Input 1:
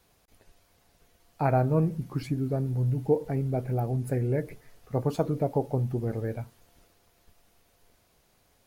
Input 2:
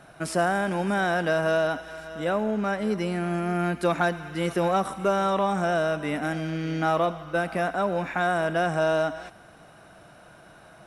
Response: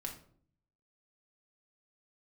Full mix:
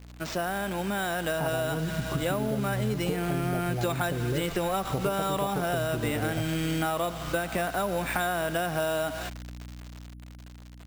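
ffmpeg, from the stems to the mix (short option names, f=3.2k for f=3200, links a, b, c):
-filter_complex "[0:a]lowpass=2.3k,acompressor=threshold=-32dB:ratio=6,volume=2dB[a];[1:a]equalizer=f=3.5k:w=1.5:g=8.5,acrusher=bits=6:mix=0:aa=0.000001,aeval=exprs='val(0)+0.00891*(sin(2*PI*60*n/s)+sin(2*PI*2*60*n/s)/2+sin(2*PI*3*60*n/s)/3+sin(2*PI*4*60*n/s)/4+sin(2*PI*5*60*n/s)/5)':c=same,volume=-4.5dB[b];[a][b]amix=inputs=2:normalize=0,dynaudnorm=f=380:g=9:m=8.5dB,acrusher=samples=4:mix=1:aa=0.000001,acompressor=threshold=-25dB:ratio=6"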